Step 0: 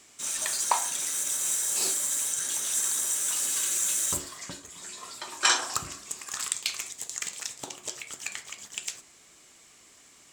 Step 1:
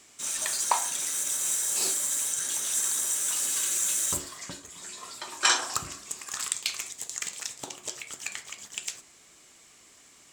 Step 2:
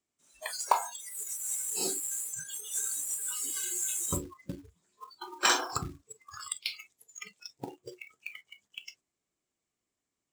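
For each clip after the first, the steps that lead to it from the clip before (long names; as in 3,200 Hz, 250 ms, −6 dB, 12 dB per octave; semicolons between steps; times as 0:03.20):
no processing that can be heard
noise reduction from a noise print of the clip's start 30 dB; tilt shelving filter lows +5.5 dB, about 780 Hz; floating-point word with a short mantissa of 2 bits; level +1.5 dB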